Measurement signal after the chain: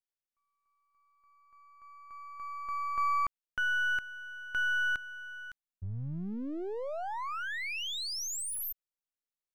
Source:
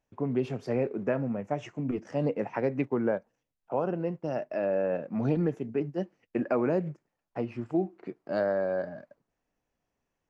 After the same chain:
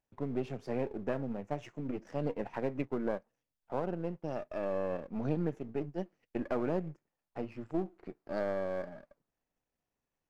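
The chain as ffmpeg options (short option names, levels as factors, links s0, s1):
-af "aeval=exprs='if(lt(val(0),0),0.447*val(0),val(0))':c=same,volume=0.631"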